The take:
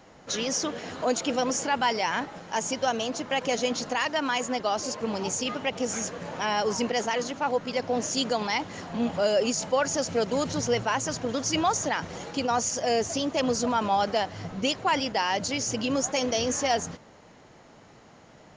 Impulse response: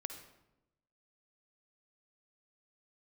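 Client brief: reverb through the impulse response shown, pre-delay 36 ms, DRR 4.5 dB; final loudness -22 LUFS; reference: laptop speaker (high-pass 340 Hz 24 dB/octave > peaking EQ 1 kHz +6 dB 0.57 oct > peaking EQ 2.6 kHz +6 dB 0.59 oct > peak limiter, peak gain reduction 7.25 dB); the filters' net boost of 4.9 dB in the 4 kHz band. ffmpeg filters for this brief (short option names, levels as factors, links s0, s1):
-filter_complex "[0:a]equalizer=f=4000:t=o:g=3,asplit=2[s0][s1];[1:a]atrim=start_sample=2205,adelay=36[s2];[s1][s2]afir=irnorm=-1:irlink=0,volume=0.75[s3];[s0][s3]amix=inputs=2:normalize=0,highpass=f=340:w=0.5412,highpass=f=340:w=1.3066,equalizer=f=1000:t=o:w=0.57:g=6,equalizer=f=2600:t=o:w=0.59:g=6,volume=1.41,alimiter=limit=0.282:level=0:latency=1"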